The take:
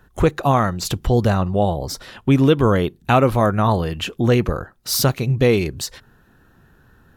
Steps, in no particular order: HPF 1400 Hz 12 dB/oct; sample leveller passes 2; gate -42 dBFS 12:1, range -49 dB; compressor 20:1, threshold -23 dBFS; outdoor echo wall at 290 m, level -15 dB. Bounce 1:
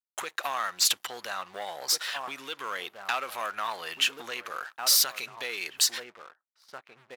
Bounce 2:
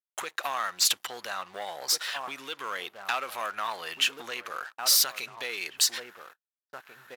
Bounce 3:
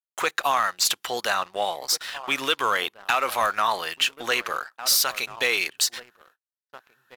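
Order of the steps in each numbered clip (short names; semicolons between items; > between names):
gate > outdoor echo > compressor > sample leveller > HPF; outdoor echo > compressor > gate > sample leveller > HPF; outdoor echo > gate > HPF > compressor > sample leveller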